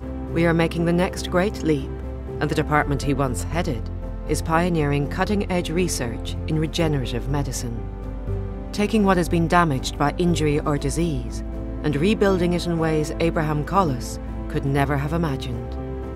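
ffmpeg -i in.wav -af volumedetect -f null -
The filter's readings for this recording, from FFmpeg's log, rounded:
mean_volume: -22.1 dB
max_volume: -3.5 dB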